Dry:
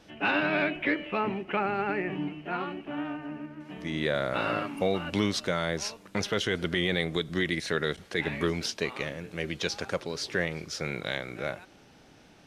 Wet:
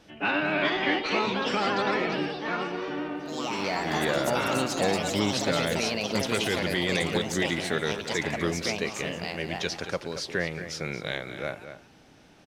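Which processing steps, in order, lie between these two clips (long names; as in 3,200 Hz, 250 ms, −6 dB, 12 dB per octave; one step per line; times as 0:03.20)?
slap from a distant wall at 39 metres, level −10 dB
delay with pitch and tempo change per echo 450 ms, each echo +4 semitones, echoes 3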